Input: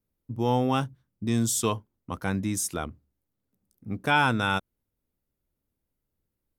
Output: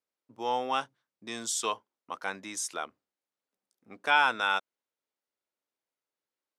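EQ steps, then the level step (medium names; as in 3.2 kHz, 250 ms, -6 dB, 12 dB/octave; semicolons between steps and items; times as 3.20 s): band-pass 650–6900 Hz; 0.0 dB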